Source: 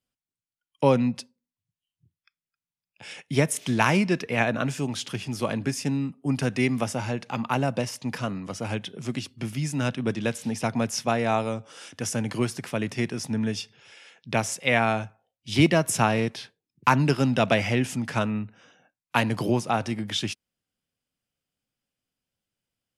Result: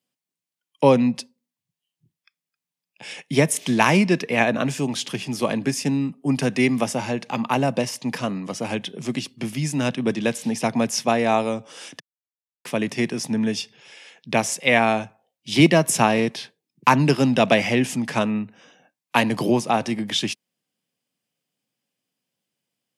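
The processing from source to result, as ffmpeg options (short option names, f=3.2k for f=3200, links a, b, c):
-filter_complex "[0:a]asplit=3[a][b][c];[a]atrim=end=12,asetpts=PTS-STARTPTS,afade=t=out:st=11.996:d=0.004:c=hsin[d];[b]atrim=start=12:end=12.65,asetpts=PTS-STARTPTS,volume=0[e];[c]atrim=start=12.65,asetpts=PTS-STARTPTS,afade=t=in:d=0.004:c=hsin[f];[d][e][f]concat=n=3:v=0:a=1,highpass=f=140:w=0.5412,highpass=f=140:w=1.3066,equalizer=f=1.4k:t=o:w=0.23:g=-7.5,volume=5dB"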